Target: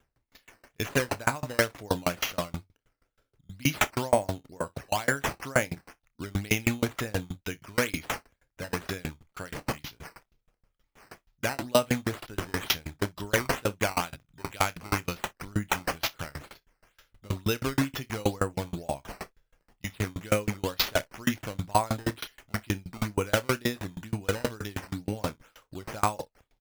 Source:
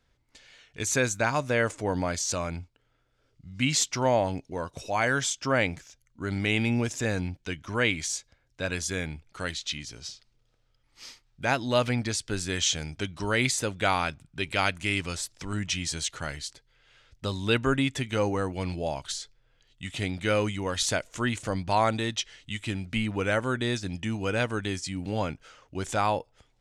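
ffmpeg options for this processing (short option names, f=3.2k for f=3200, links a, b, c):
-filter_complex "[0:a]acrusher=samples=9:mix=1:aa=0.000001:lfo=1:lforange=9:lforate=2.1,asplit=2[a][b];[b]aecho=0:1:29|62:0.299|0.158[c];[a][c]amix=inputs=2:normalize=0,aeval=exprs='val(0)*pow(10,-31*if(lt(mod(6.3*n/s,1),2*abs(6.3)/1000),1-mod(6.3*n/s,1)/(2*abs(6.3)/1000),(mod(6.3*n/s,1)-2*abs(6.3)/1000)/(1-2*abs(6.3)/1000))/20)':c=same,volume=6dB"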